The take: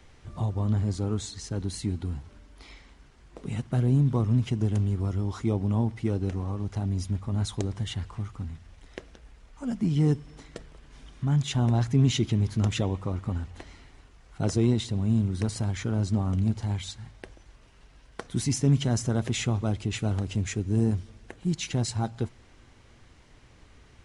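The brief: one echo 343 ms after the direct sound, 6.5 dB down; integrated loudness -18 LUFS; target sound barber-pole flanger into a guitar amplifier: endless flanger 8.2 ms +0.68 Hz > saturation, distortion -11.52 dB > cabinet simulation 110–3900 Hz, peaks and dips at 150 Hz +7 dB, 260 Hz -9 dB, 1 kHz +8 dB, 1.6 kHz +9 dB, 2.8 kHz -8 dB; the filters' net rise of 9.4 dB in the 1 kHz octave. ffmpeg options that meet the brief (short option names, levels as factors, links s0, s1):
-filter_complex "[0:a]equalizer=f=1000:t=o:g=6.5,aecho=1:1:343:0.473,asplit=2[s0][s1];[s1]adelay=8.2,afreqshift=0.68[s2];[s0][s2]amix=inputs=2:normalize=1,asoftclip=threshold=0.0562,highpass=110,equalizer=f=150:t=q:w=4:g=7,equalizer=f=260:t=q:w=4:g=-9,equalizer=f=1000:t=q:w=4:g=8,equalizer=f=1600:t=q:w=4:g=9,equalizer=f=2800:t=q:w=4:g=-8,lowpass=f=3900:w=0.5412,lowpass=f=3900:w=1.3066,volume=5.96"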